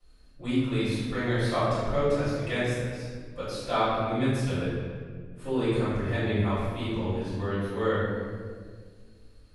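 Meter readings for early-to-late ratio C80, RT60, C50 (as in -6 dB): 0.0 dB, 1.7 s, -3.0 dB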